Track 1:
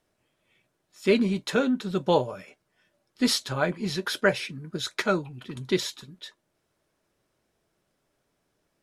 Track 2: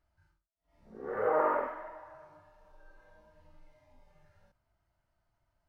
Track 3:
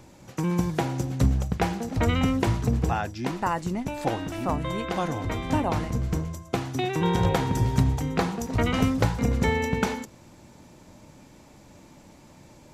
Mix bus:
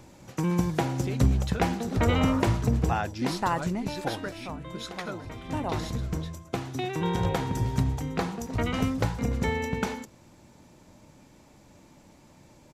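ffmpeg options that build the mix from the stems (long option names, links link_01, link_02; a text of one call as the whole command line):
ffmpeg -i stem1.wav -i stem2.wav -i stem3.wav -filter_complex "[0:a]acompressor=threshold=-26dB:ratio=6,volume=-7dB,asplit=2[link_01][link_02];[link_02]volume=-17.5dB[link_03];[1:a]adelay=850,volume=-7dB[link_04];[2:a]volume=7dB,afade=type=out:start_time=3.65:duration=0.79:silence=0.281838,afade=type=in:start_time=5.4:duration=0.32:silence=0.421697[link_05];[link_03]aecho=0:1:956|1912|2868|3824|4780|5736:1|0.44|0.194|0.0852|0.0375|0.0165[link_06];[link_01][link_04][link_05][link_06]amix=inputs=4:normalize=0" out.wav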